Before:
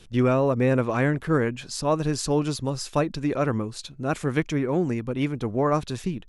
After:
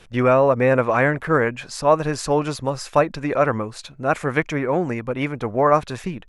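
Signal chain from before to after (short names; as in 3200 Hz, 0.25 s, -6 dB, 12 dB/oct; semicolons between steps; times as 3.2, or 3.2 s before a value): band shelf 1100 Hz +8.5 dB 2.6 oct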